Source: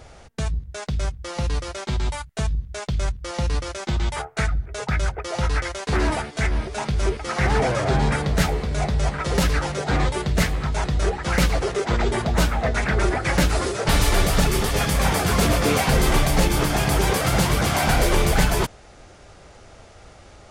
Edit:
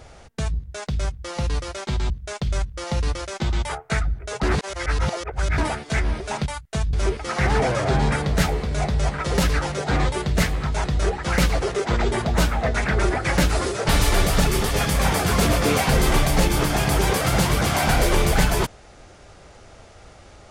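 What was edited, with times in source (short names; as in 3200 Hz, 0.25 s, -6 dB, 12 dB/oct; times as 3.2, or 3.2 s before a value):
2.1–2.57 move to 6.93
4.9–6.05 reverse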